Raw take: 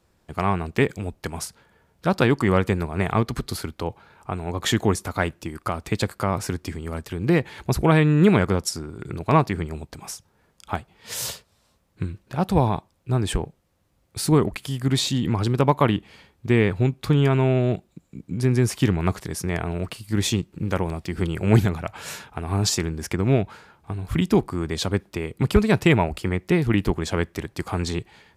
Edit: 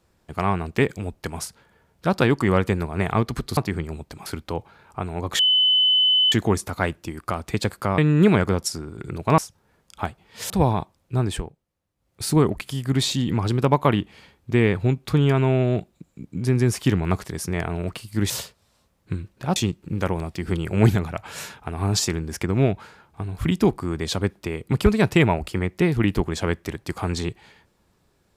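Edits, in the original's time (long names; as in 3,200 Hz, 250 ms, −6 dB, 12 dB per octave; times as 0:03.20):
0:04.70: insert tone 3,020 Hz −14.5 dBFS 0.93 s
0:06.36–0:07.99: remove
0:09.39–0:10.08: move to 0:03.57
0:11.20–0:12.46: move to 0:20.26
0:13.20–0:14.20: duck −12.5 dB, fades 0.28 s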